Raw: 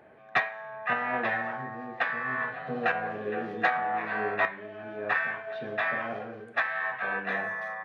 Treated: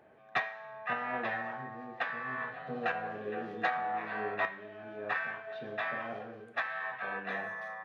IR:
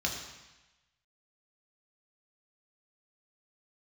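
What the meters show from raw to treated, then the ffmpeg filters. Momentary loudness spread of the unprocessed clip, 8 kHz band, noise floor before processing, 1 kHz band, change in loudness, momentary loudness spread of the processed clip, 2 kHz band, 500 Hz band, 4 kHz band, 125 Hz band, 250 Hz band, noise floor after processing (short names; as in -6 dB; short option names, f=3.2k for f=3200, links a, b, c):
8 LU, n/a, -49 dBFS, -5.0 dB, -6.0 dB, 8 LU, -7.0 dB, -5.5 dB, -4.0 dB, -5.5 dB, -5.5 dB, -54 dBFS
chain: -filter_complex "[0:a]asplit=2[a][b];[b]highpass=1.4k[c];[1:a]atrim=start_sample=2205[d];[c][d]afir=irnorm=-1:irlink=0,volume=-16.5dB[e];[a][e]amix=inputs=2:normalize=0,volume=-5.5dB"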